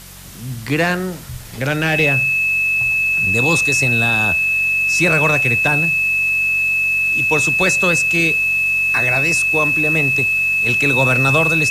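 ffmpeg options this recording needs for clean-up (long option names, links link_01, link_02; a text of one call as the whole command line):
ffmpeg -i in.wav -af "adeclick=threshold=4,bandreject=frequency=46.2:width_type=h:width=4,bandreject=frequency=92.4:width_type=h:width=4,bandreject=frequency=138.6:width_type=h:width=4,bandreject=frequency=184.8:width_type=h:width=4,bandreject=frequency=2600:width=30,afwtdn=0.013" out.wav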